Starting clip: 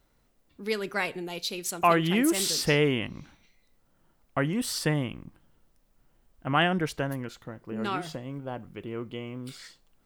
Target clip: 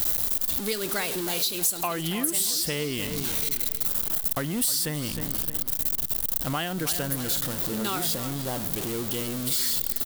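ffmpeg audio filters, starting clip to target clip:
-filter_complex "[0:a]aeval=exprs='val(0)+0.5*0.0266*sgn(val(0))':c=same,asplit=2[a][b];[b]adelay=312,lowpass=f=3.3k:p=1,volume=-13dB,asplit=2[c][d];[d]adelay=312,lowpass=f=3.3k:p=1,volume=0.42,asplit=2[e][f];[f]adelay=312,lowpass=f=3.3k:p=1,volume=0.42,asplit=2[g][h];[h]adelay=312,lowpass=f=3.3k:p=1,volume=0.42[i];[c][e][g][i]amix=inputs=4:normalize=0[j];[a][j]amix=inputs=2:normalize=0,aexciter=amount=3.1:drive=3.4:freq=3.3k,acompressor=threshold=-25dB:ratio=12,highshelf=f=10k:g=8"

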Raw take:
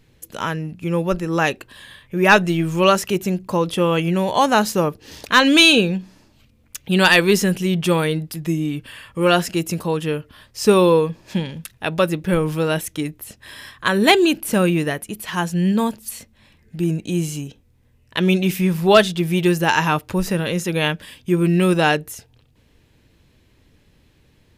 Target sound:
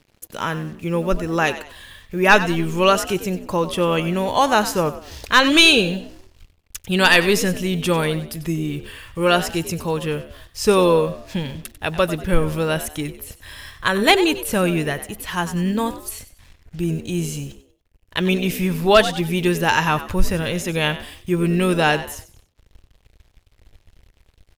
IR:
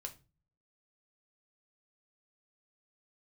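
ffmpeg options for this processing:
-filter_complex "[0:a]acrusher=bits=7:mix=0:aa=0.5,asplit=4[a][b][c][d];[b]adelay=95,afreqshift=64,volume=-14dB[e];[c]adelay=190,afreqshift=128,volume=-23.4dB[f];[d]adelay=285,afreqshift=192,volume=-32.7dB[g];[a][e][f][g]amix=inputs=4:normalize=0,asubboost=boost=7.5:cutoff=71"

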